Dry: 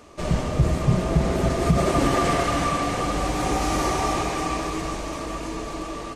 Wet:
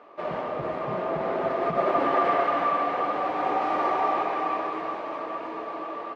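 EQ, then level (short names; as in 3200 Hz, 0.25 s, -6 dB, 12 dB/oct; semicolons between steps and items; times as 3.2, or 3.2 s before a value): HPF 860 Hz 12 dB/oct; air absorption 380 m; tilt shelf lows +8.5 dB, about 1200 Hz; +4.0 dB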